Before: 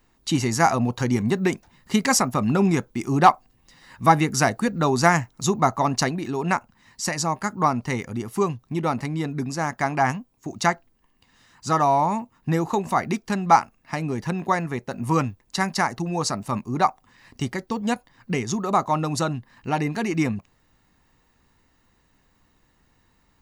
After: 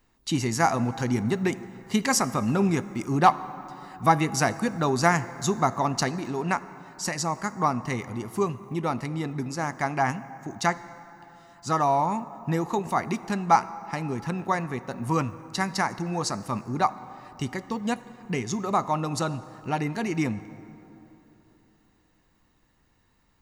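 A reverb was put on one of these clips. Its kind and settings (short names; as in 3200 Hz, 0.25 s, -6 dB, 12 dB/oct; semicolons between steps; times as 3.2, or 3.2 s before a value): plate-style reverb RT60 3.5 s, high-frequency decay 0.45×, DRR 14.5 dB; gain -3.5 dB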